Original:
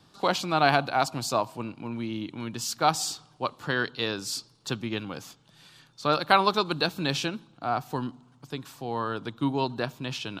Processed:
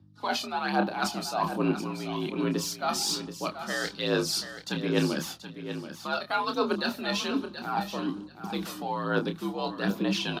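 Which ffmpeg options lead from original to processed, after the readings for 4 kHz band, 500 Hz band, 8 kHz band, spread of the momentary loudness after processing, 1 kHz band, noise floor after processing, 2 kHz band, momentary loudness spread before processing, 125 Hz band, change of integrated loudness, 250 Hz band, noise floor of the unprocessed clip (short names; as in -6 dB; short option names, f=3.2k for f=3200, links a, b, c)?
-1.0 dB, -1.0 dB, 0.0 dB, 8 LU, -4.0 dB, -47 dBFS, -2.5 dB, 13 LU, -1.0 dB, -2.0 dB, +2.5 dB, -60 dBFS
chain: -filter_complex "[0:a]equalizer=f=7.6k:t=o:w=0.29:g=-6.5,agate=range=-27dB:threshold=-50dB:ratio=16:detection=peak,areverse,acompressor=threshold=-37dB:ratio=5,areverse,aeval=exprs='val(0)+0.000355*(sin(2*PI*50*n/s)+sin(2*PI*2*50*n/s)/2+sin(2*PI*3*50*n/s)/3+sin(2*PI*4*50*n/s)/4+sin(2*PI*5*50*n/s)/5)':c=same,aphaser=in_gain=1:out_gain=1:delay=1.7:decay=0.55:speed=1.2:type=sinusoidal,asplit=2[a][b];[b]adelay=28,volume=-7dB[c];[a][c]amix=inputs=2:normalize=0,asplit=2[d][e];[e]aecho=0:1:730|1460:0.299|0.0478[f];[d][f]amix=inputs=2:normalize=0,afreqshift=57,volume=7.5dB" -ar 48000 -c:a libvorbis -b:a 96k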